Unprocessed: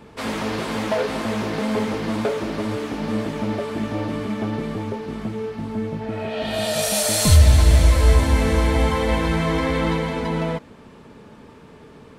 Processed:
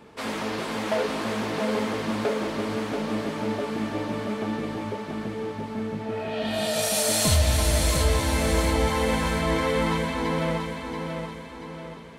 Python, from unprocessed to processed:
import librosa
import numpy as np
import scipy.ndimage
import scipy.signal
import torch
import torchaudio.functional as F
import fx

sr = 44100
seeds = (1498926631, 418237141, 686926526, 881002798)

y = fx.low_shelf(x, sr, hz=130.0, db=-9.5)
y = fx.echo_feedback(y, sr, ms=683, feedback_pct=46, wet_db=-5.5)
y = y * 10.0 ** (-3.0 / 20.0)